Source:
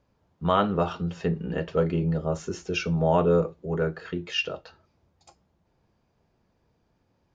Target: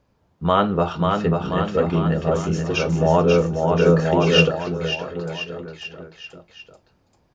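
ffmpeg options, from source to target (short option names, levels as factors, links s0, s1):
-filter_complex "[0:a]aecho=1:1:540|1026|1463|1857|2211:0.631|0.398|0.251|0.158|0.1,asettb=1/sr,asplit=3[s0][s1][s2];[s0]atrim=end=3.864[s3];[s1]atrim=start=3.86:end=4.51,asetpts=PTS-STARTPTS,afade=t=in:d=0.004:c=qsin,afade=t=out:st=0.646:d=0.004:c=qsin,acontrast=21[s4];[s2]atrim=start=4.506[s5];[s3][s4]acrossfade=d=0.004:c1=hsin:c2=qsin[s6];[s6][s5]acrossfade=d=0.004:c1=qsin:c2=hsin,volume=1.68"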